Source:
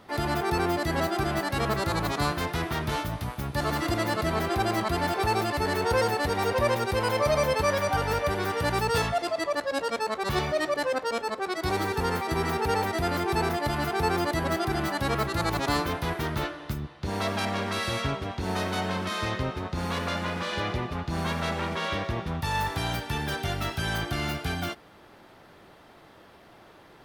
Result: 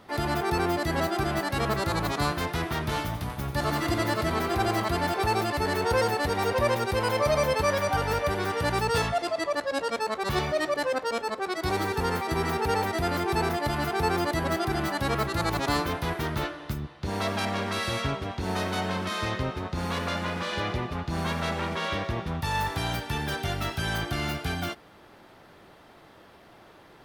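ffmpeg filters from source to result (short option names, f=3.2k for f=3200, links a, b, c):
-filter_complex "[0:a]asettb=1/sr,asplit=3[a][b][c];[a]atrim=end=2.854[d];[b]atrim=start=2.85:end=4.98,asetpts=PTS-STARTPTS,afade=t=in:d=0.004:c=qsin,afade=t=out:st=2.126:d=0.004:c=qsin,aecho=1:1:45|89:0.133|0.316,atrim=end_sample=93933[e];[c]atrim=start=4.976[f];[d][e]acrossfade=d=0.004:c1=hsin:c2=qsin[g];[g][f]acrossfade=d=0.004:c1=qsin:c2=hsin,asettb=1/sr,asplit=3[h][i][j];[h]atrim=end=8.424[k];[i]atrim=start=8.42:end=9.92,asetpts=PTS-STARTPTS,afade=t=in:d=0.004:c=qsin,afade=t=out:st=1.496:d=0.004:c=qsin,equalizer=f=15k:w=2.4:g=-9[l];[j]atrim=start=9.916[m];[k][l]acrossfade=d=0.004:c1=hsin:c2=qsin[n];[n][m]acrossfade=d=0.004:c1=qsin:c2=hsin"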